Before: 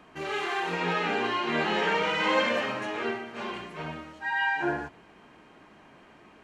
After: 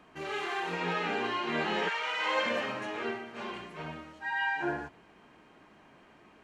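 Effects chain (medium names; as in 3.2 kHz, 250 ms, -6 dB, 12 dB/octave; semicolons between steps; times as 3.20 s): 1.88–2.44 s: high-pass 1.2 kHz -> 410 Hz 12 dB/octave; trim -4 dB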